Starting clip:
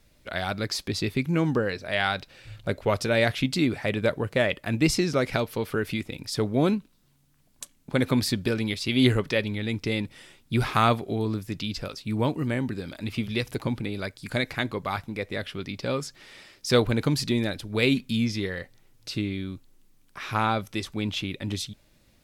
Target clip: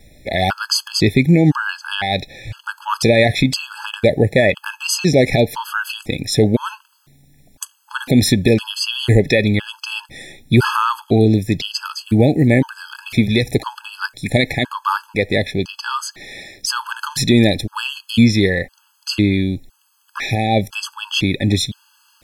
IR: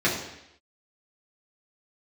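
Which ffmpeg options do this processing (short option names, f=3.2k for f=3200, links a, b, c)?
-af "alimiter=level_in=16.5dB:limit=-1dB:release=50:level=0:latency=1,afftfilt=real='re*gt(sin(2*PI*0.99*pts/sr)*(1-2*mod(floor(b*sr/1024/850),2)),0)':imag='im*gt(sin(2*PI*0.99*pts/sr)*(1-2*mod(floor(b*sr/1024/850),2)),0)':win_size=1024:overlap=0.75,volume=-1.5dB"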